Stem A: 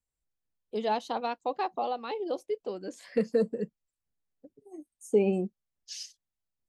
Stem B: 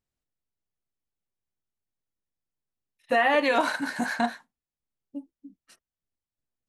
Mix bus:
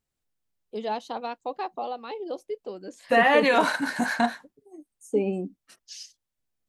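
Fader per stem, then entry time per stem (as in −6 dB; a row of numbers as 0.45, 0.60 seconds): −1.0, +2.5 decibels; 0.00, 0.00 seconds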